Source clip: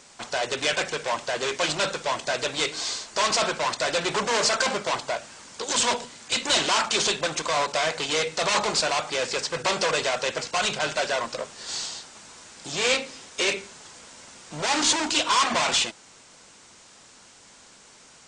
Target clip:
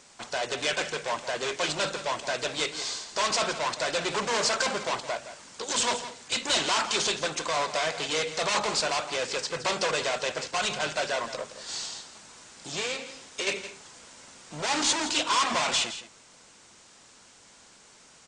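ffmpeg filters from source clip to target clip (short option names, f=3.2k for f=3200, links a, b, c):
-filter_complex "[0:a]asettb=1/sr,asplit=3[a][b][c];[a]atrim=end=12.794[d];[b]atrim=start=12.79:end=13.47,asetpts=PTS-STARTPTS,afade=t=in:d=0.004:c=qsin,afade=t=out:st=0.676:d=0.004:c=qsin,acompressor=threshold=-25dB:ratio=6[e];[c]atrim=start=13.466[f];[d][e]acrossfade=d=0.004:c1=hsin:c2=qsin[g];[g][f]acrossfade=d=0.004:c1=qsin:c2=hsin,aecho=1:1:167:0.237,volume=-3.5dB"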